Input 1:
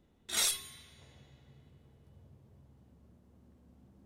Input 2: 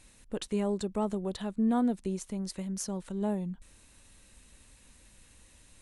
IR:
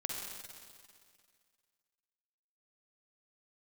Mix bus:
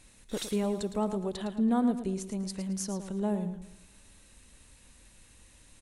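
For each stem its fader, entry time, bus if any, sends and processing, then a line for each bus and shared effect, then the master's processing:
-9.0 dB, 0.00 s, send -14.5 dB, no echo send, auto duck -10 dB, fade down 0.60 s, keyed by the second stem
0.0 dB, 0.00 s, send -23.5 dB, echo send -10 dB, none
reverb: on, RT60 2.1 s, pre-delay 44 ms
echo: feedback delay 110 ms, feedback 34%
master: none

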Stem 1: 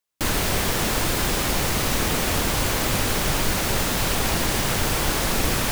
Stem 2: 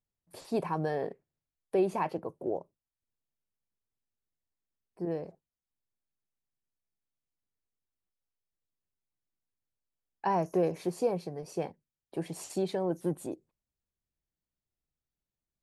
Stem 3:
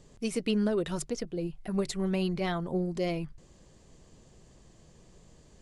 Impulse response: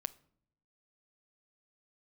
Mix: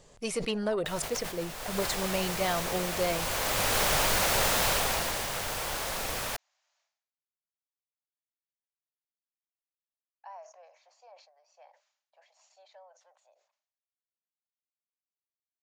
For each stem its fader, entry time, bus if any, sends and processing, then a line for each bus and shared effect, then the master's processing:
1.45 s -20 dB -> 1.83 s -10 dB -> 3.07 s -10 dB -> 3.80 s -1.5 dB -> 4.65 s -1.5 dB -> 5.27 s -9.5 dB, 0.65 s, no send, none
-17.5 dB, 0.00 s, no send, Chebyshev band-pass 590–6900 Hz, order 5
+2.0 dB, 0.00 s, send -14 dB, saturation -19.5 dBFS, distortion -24 dB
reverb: on, pre-delay 7 ms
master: resonant low shelf 420 Hz -7.5 dB, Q 1.5; decay stretcher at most 92 dB/s

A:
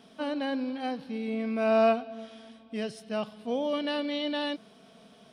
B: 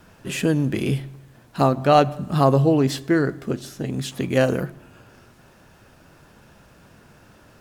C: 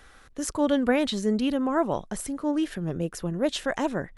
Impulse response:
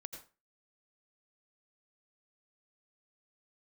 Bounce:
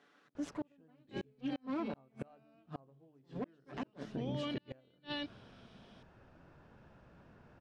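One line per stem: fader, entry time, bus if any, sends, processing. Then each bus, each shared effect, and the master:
-2.5 dB, 0.70 s, no send, peaking EQ 590 Hz -8 dB 2.2 oct
-8.0 dB, 0.35 s, no send, treble shelf 2.2 kHz -11.5 dB; hum notches 50/100/150/200/250/300/350/400/450/500 Hz
-13.0 dB, 0.00 s, no send, comb filter that takes the minimum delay 6.9 ms; high-pass 210 Hz 24 dB/octave; bass shelf 360 Hz +11 dB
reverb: none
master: low-pass 4.6 kHz 12 dB/octave; inverted gate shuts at -22 dBFS, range -38 dB; peak limiter -30 dBFS, peak gain reduction 8.5 dB

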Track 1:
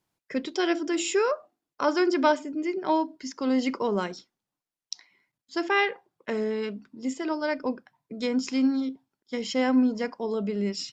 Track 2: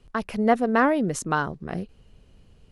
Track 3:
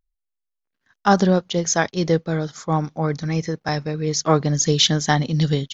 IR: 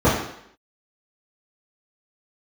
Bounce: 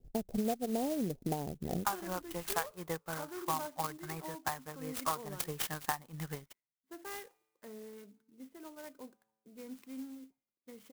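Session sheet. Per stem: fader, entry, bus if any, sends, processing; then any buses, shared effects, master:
-16.5 dB, 1.35 s, no bus, no send, level-controlled noise filter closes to 2.1 kHz, open at -22.5 dBFS; feedback comb 110 Hz, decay 1.4 s, harmonics all, mix 40%
-4.5 dB, 0.00 s, bus A, no send, local Wiener filter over 25 samples; elliptic low-pass 780 Hz
-14.5 dB, 0.80 s, bus A, no send, graphic EQ 125/250/500/1000/2000/4000 Hz -8/-10/-7/+11/+4/-11 dB
bus A: 0.0 dB, transient shaper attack +5 dB, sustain -5 dB; compression 8:1, threshold -30 dBFS, peak gain reduction 13.5 dB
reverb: none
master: level-controlled noise filter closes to 2.4 kHz, open at -33.5 dBFS; sampling jitter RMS 0.075 ms

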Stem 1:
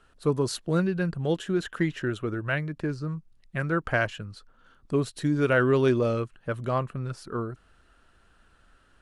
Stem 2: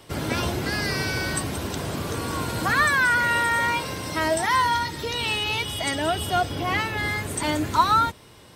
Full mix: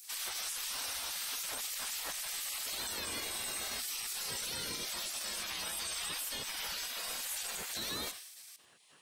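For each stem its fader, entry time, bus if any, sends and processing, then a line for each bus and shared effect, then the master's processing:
-3.0 dB, 0.00 s, no send, no echo send, upward compressor, threshold -47 dBFS
+1.0 dB, 0.00 s, no send, echo send -19 dB, random-step tremolo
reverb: none
echo: feedback delay 89 ms, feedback 26%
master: spectral gate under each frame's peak -20 dB weak; treble shelf 3.5 kHz +10.5 dB; peak limiter -29.5 dBFS, peak gain reduction 18 dB

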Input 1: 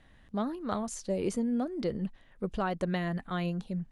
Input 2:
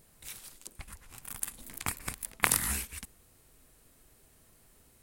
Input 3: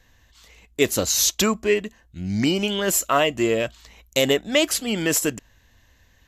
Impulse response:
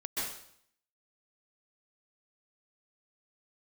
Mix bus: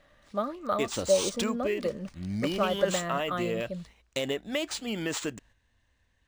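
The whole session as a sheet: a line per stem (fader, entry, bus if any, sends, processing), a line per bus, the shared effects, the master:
-1.5 dB, 0.00 s, no send, tilt EQ +1.5 dB/octave; small resonant body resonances 580/1200 Hz, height 15 dB
-17.0 dB, 0.00 s, no send, none
-7.0 dB, 0.00 s, no send, gate -47 dBFS, range -6 dB; compression 2.5:1, threshold -21 dBFS, peak gain reduction 6 dB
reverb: none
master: decimation joined by straight lines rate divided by 3×

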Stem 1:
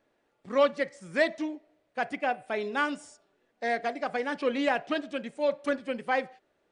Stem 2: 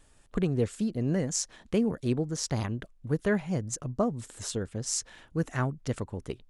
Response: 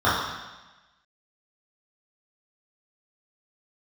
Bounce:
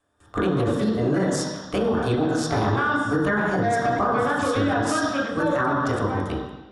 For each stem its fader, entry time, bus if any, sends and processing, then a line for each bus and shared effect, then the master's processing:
2.37 s -12 dB -> 2.77 s -0.5 dB -> 5.63 s -0.5 dB -> 5.87 s -12 dB, 0.00 s, send -9.5 dB, peak limiter -21 dBFS, peak gain reduction 9 dB
-2.5 dB, 0.00 s, send -9 dB, spectral peaks clipped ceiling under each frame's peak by 13 dB; gate with hold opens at -46 dBFS; peaking EQ 320 Hz +6 dB 0.42 oct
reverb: on, RT60 1.1 s, pre-delay 3 ms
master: peak limiter -13.5 dBFS, peak gain reduction 9 dB

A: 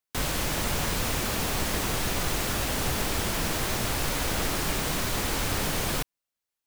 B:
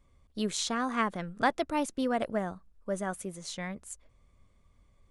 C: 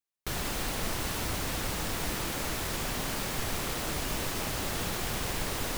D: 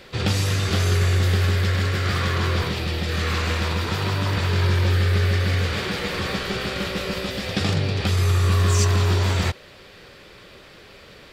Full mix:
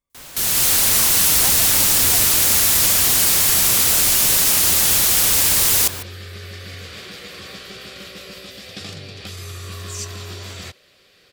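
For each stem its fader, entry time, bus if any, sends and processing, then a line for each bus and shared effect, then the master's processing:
-14.0 dB, 0.00 s, no send, none
-16.5 dB, 0.00 s, no send, none
-2.5 dB, 0.10 s, no send, octave divider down 1 oct, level +4 dB; peaking EQ 13 kHz +12 dB 2.6 oct
-20.0 dB, 1.20 s, no send, peaking EQ 1.5 kHz -3.5 dB 1.4 oct; band-stop 890 Hz, Q 5.2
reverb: none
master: tilt EQ +2 dB/octave; level rider gain up to 11 dB

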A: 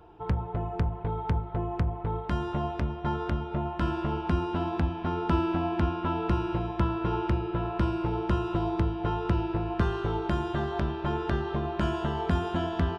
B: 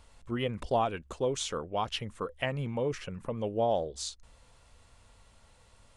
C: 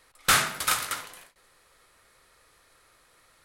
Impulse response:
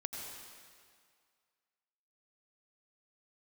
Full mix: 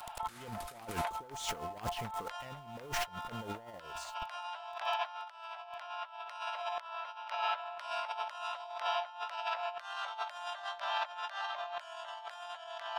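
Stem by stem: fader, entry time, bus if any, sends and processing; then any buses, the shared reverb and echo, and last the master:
+1.5 dB, 0.00 s, no send, steep high-pass 600 Hz 72 dB/octave; treble shelf 2.5 kHz +10 dB
+1.5 dB, 0.00 s, no send, saturation -30.5 dBFS, distortion -8 dB; word length cut 8-bit, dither none
-11.0 dB, 0.00 s, no send, none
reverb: none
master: compressor with a negative ratio -39 dBFS, ratio -0.5

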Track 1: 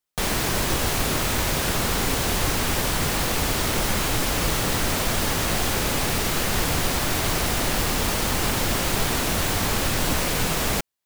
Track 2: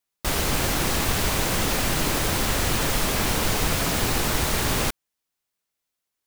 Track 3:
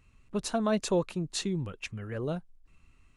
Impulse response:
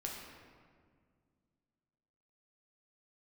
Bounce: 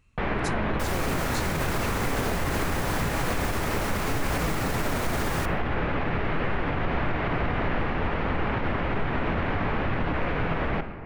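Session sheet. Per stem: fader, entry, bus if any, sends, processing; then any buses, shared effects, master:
-3.5 dB, 0.00 s, send -4.5 dB, low-pass 2.3 kHz 24 dB/octave
-11.0 dB, 0.55 s, send -8.5 dB, none
-1.0 dB, 0.00 s, no send, compression, threshold -29 dBFS, peak gain reduction 7.5 dB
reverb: on, RT60 1.9 s, pre-delay 6 ms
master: peak limiter -17 dBFS, peak gain reduction 6 dB

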